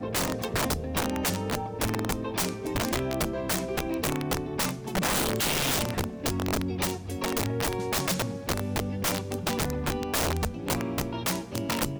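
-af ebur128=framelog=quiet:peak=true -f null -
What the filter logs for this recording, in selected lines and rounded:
Integrated loudness:
  I:         -28.8 LUFS
  Threshold: -38.8 LUFS
Loudness range:
  LRA:         1.6 LU
  Threshold: -48.6 LUFS
  LRA low:   -29.4 LUFS
  LRA high:  -27.7 LUFS
True peak:
  Peak:      -15.6 dBFS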